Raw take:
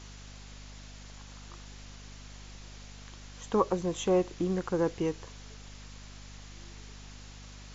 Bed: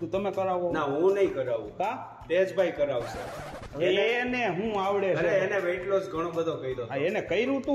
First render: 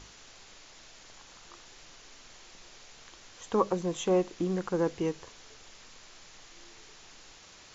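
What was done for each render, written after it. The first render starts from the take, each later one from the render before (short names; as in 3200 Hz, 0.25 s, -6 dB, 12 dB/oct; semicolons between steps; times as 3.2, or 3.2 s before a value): notches 50/100/150/200/250 Hz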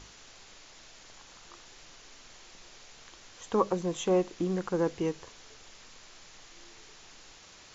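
nothing audible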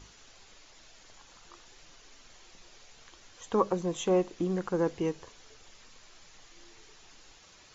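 denoiser 6 dB, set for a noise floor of -54 dBFS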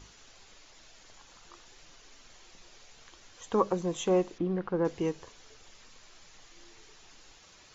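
4.38–4.85 air absorption 290 m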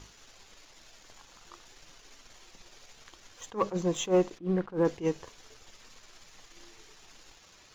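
sample leveller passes 1; attack slew limiter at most 260 dB/s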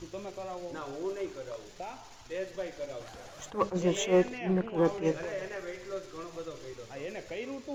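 add bed -12 dB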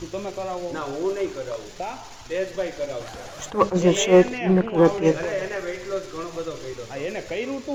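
gain +10 dB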